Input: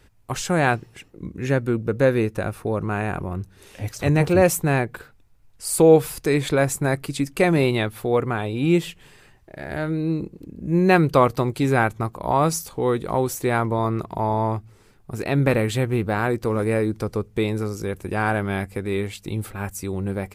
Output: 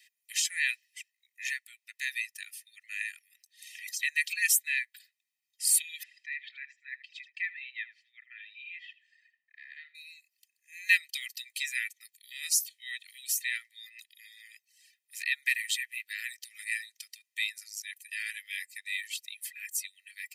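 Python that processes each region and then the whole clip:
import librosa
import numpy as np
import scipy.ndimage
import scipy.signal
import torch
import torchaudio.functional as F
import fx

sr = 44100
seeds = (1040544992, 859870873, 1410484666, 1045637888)

y = fx.chain(x, sr, fx.env_lowpass_down(base_hz=2700.0, full_db=-18.0),
    fx.spacing_loss(db_at_10k=36),
    fx.echo_single(ms=79, db=-8.0), at=(6.03, 9.95))
y = scipy.signal.sosfilt(scipy.signal.butter(16, 1800.0, 'highpass', fs=sr, output='sos'), y)
y = fx.dereverb_blind(y, sr, rt60_s=1.1)
y = y + 0.85 * np.pad(y, (int(1.6 * sr / 1000.0), 0))[:len(y)]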